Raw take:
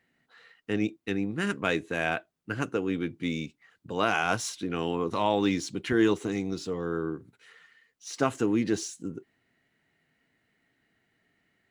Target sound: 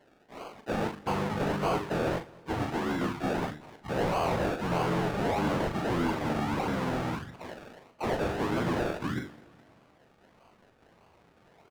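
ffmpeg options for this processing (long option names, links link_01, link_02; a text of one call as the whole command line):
ffmpeg -i in.wav -filter_complex "[0:a]afftfilt=real='re*pow(10,18/40*sin(2*PI*(0.82*log(max(b,1)*sr/1024/100)/log(2)-(-0.31)*(pts-256)/sr)))':imag='im*pow(10,18/40*sin(2*PI*(0.82*log(max(b,1)*sr/1024/100)/log(2)-(-0.31)*(pts-256)/sr)))':win_size=1024:overlap=0.75,bandreject=frequency=50:width_type=h:width=6,bandreject=frequency=100:width_type=h:width=6,bandreject=frequency=150:width_type=h:width=6,bandreject=frequency=200:width_type=h:width=6,bandreject=frequency=250:width_type=h:width=6,bandreject=frequency=300:width_type=h:width=6,bandreject=frequency=350:width_type=h:width=6,bandreject=frequency=400:width_type=h:width=6,bandreject=frequency=450:width_type=h:width=6,asplit=4[link_01][link_02][link_03][link_04];[link_02]asetrate=22050,aresample=44100,atempo=2,volume=-11dB[link_05];[link_03]asetrate=33038,aresample=44100,atempo=1.33484,volume=-3dB[link_06];[link_04]asetrate=58866,aresample=44100,atempo=0.749154,volume=-14dB[link_07];[link_01][link_05][link_06][link_07]amix=inputs=4:normalize=0,highshelf=frequency=3000:gain=-2.5,acrossover=split=160|930|1900[link_08][link_09][link_10][link_11];[link_08]acompressor=threshold=-40dB:ratio=4[link_12];[link_09]acompressor=threshold=-24dB:ratio=4[link_13];[link_10]acompressor=threshold=-35dB:ratio=4[link_14];[link_11]acompressor=threshold=-34dB:ratio=4[link_15];[link_12][link_13][link_14][link_15]amix=inputs=4:normalize=0,aexciter=amount=2:drive=9.1:freq=2400,asubboost=boost=6:cutoff=140,aresample=16000,asoftclip=type=tanh:threshold=-18dB,aresample=44100,acrusher=samples=34:mix=1:aa=0.000001:lfo=1:lforange=20.4:lforate=1.6,asplit=2[link_16][link_17];[link_17]highpass=frequency=720:poles=1,volume=19dB,asoftclip=type=tanh:threshold=-16.5dB[link_18];[link_16][link_18]amix=inputs=2:normalize=0,lowpass=frequency=1900:poles=1,volume=-6dB,asplit=2[link_19][link_20];[link_20]adelay=40,volume=-8dB[link_21];[link_19][link_21]amix=inputs=2:normalize=0,aecho=1:1:218|436|654|872:0.0668|0.0374|0.021|0.0117,volume=-3.5dB" out.wav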